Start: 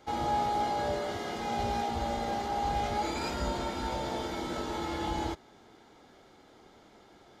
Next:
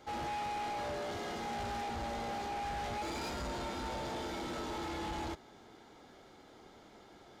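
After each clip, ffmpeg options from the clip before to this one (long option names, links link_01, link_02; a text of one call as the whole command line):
ffmpeg -i in.wav -af "asoftclip=type=tanh:threshold=-36dB" out.wav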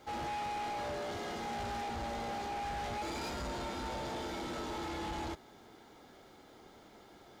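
ffmpeg -i in.wav -af "acrusher=bits=11:mix=0:aa=0.000001" out.wav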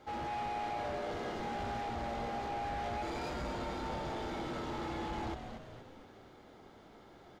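ffmpeg -i in.wav -filter_complex "[0:a]highshelf=frequency=4700:gain=-11,asplit=7[link_01][link_02][link_03][link_04][link_05][link_06][link_07];[link_02]adelay=235,afreqshift=-110,volume=-7.5dB[link_08];[link_03]adelay=470,afreqshift=-220,volume=-13.2dB[link_09];[link_04]adelay=705,afreqshift=-330,volume=-18.9dB[link_10];[link_05]adelay=940,afreqshift=-440,volume=-24.5dB[link_11];[link_06]adelay=1175,afreqshift=-550,volume=-30.2dB[link_12];[link_07]adelay=1410,afreqshift=-660,volume=-35.9dB[link_13];[link_01][link_08][link_09][link_10][link_11][link_12][link_13]amix=inputs=7:normalize=0" out.wav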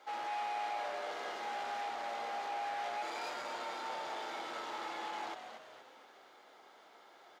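ffmpeg -i in.wav -af "highpass=700,volume=2dB" out.wav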